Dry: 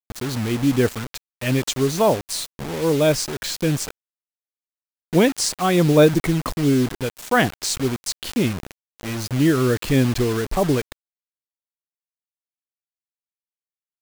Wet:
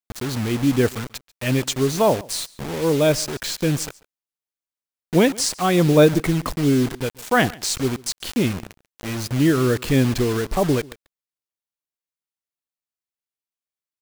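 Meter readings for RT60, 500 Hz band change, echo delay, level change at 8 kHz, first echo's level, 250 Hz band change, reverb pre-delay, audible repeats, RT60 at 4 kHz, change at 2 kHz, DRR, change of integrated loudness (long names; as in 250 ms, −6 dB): no reverb audible, 0.0 dB, 140 ms, 0.0 dB, −23.0 dB, 0.0 dB, no reverb audible, 1, no reverb audible, 0.0 dB, no reverb audible, 0.0 dB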